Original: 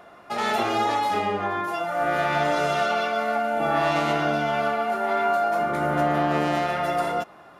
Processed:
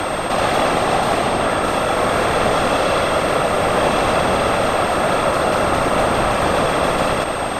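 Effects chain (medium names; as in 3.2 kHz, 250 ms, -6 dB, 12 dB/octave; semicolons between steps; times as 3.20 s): spectral levelling over time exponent 0.2; whisper effect; frequency shift -100 Hz; whistle 8.4 kHz -35 dBFS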